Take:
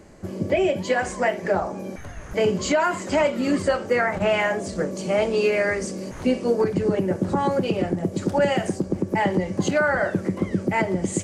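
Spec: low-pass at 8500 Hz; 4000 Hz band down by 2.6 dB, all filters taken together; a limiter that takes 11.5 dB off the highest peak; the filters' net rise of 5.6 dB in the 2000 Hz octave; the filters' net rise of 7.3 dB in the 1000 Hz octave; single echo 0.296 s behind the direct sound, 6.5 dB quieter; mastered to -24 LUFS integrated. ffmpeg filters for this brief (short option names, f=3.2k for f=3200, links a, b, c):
-af "lowpass=8.5k,equalizer=f=1k:t=o:g=8.5,equalizer=f=2k:t=o:g=5.5,equalizer=f=4k:t=o:g=-8,alimiter=limit=-15.5dB:level=0:latency=1,aecho=1:1:296:0.473"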